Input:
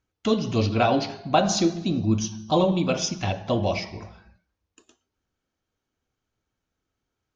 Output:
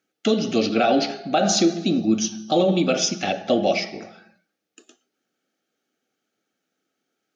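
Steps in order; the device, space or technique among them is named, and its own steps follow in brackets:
PA system with an anti-feedback notch (high-pass filter 200 Hz 24 dB per octave; Butterworth band-reject 1,000 Hz, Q 3.1; brickwall limiter −15.5 dBFS, peak gain reduction 8.5 dB)
level +6 dB

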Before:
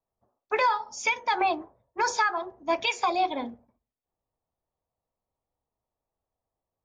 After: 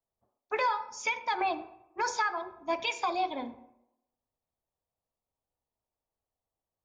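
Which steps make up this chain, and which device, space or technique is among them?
filtered reverb send (on a send: high-pass filter 240 Hz + low-pass filter 5,000 Hz + convolution reverb RT60 0.85 s, pre-delay 43 ms, DRR 14 dB)
on the sum: level −5 dB

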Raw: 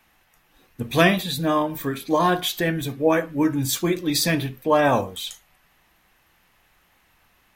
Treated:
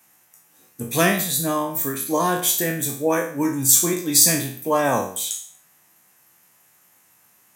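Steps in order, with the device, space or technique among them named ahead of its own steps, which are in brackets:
peak hold with a decay on every bin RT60 0.50 s
budget condenser microphone (high-pass filter 110 Hz 24 dB per octave; high shelf with overshoot 5,200 Hz +11.5 dB, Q 1.5)
level −2.5 dB

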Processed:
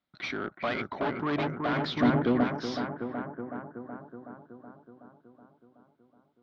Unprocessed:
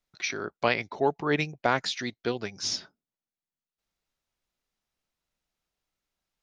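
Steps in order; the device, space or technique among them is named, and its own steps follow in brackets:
analogue delay pedal into a guitar amplifier (bucket-brigade delay 373 ms, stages 4,096, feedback 65%, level −4 dB; tube saturation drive 29 dB, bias 0.45; loudspeaker in its box 92–3,500 Hz, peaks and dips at 98 Hz −3 dB, 250 Hz +5 dB, 440 Hz −8 dB, 880 Hz −3 dB, 1,800 Hz −4 dB, 2,600 Hz −8 dB)
0:01.96–0:02.44: low-shelf EQ 480 Hz +9 dB
level +6 dB

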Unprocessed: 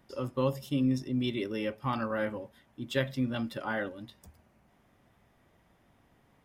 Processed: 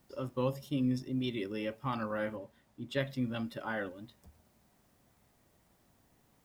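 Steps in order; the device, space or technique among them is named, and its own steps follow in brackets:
plain cassette with noise reduction switched in (one half of a high-frequency compander decoder only; tape wow and flutter; white noise bed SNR 37 dB)
0:02.36–0:03.00: high-shelf EQ 6,200 Hz −7 dB
level −3.5 dB

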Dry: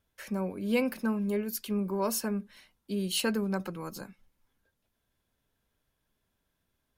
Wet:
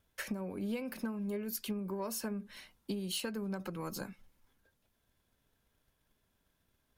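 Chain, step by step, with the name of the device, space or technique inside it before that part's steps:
drum-bus smash (transient designer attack +7 dB, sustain +3 dB; downward compressor 8 to 1, threshold −35 dBFS, peak gain reduction 16 dB; soft clipping −26.5 dBFS, distortion −25 dB)
level +1 dB

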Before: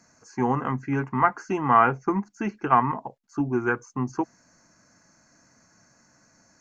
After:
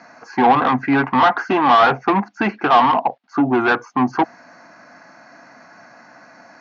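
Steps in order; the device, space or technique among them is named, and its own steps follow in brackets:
overdrive pedal into a guitar cabinet (mid-hump overdrive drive 28 dB, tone 3,500 Hz, clips at −4.5 dBFS; loudspeaker in its box 98–4,200 Hz, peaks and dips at 260 Hz +4 dB, 420 Hz −3 dB, 730 Hz +8 dB)
level −2.5 dB

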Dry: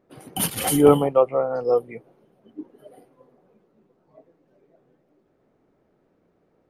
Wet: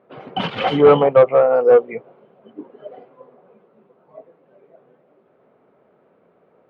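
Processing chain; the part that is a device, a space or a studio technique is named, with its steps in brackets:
0:01.42–0:01.93: low shelf with overshoot 200 Hz −9 dB, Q 1.5
overdrive pedal into a guitar cabinet (mid-hump overdrive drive 19 dB, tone 1,100 Hz, clips at −2 dBFS; loudspeaker in its box 92–3,600 Hz, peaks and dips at 310 Hz −9 dB, 820 Hz −3 dB, 1,800 Hz −4 dB)
level +3 dB

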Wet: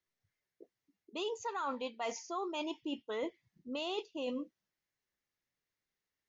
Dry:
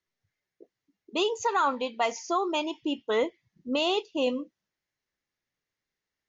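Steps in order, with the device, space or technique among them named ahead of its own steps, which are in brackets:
compression on the reversed sound (reversed playback; downward compressor 6 to 1, threshold −31 dBFS, peak gain reduction 9.5 dB; reversed playback)
level −4 dB

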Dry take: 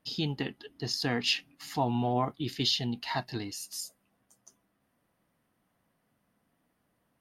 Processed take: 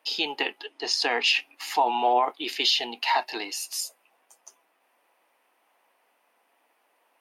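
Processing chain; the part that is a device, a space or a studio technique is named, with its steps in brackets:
laptop speaker (high-pass filter 390 Hz 24 dB per octave; parametric band 880 Hz +8 dB 0.47 octaves; parametric band 2,500 Hz +9 dB 0.49 octaves; brickwall limiter −19.5 dBFS, peak gain reduction 9.5 dB)
0:00.63–0:01.30: low-pass filter 9,800 Hz 24 dB per octave
level +7 dB

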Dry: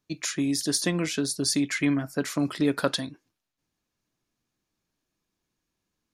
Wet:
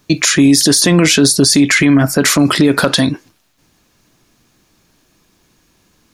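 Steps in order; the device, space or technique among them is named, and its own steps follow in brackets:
loud club master (downward compressor 2.5 to 1, threshold −25 dBFS, peak gain reduction 5 dB; hard clipping −16 dBFS, distortion −31 dB; boost into a limiter +26.5 dB)
level −1 dB

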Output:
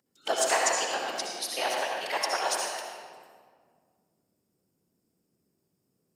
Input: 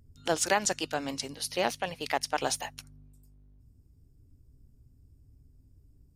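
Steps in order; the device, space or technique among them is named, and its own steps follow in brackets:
whispering ghost (random phases in short frames; high-pass filter 580 Hz 12 dB per octave; convolution reverb RT60 1.9 s, pre-delay 57 ms, DRR −1.5 dB)

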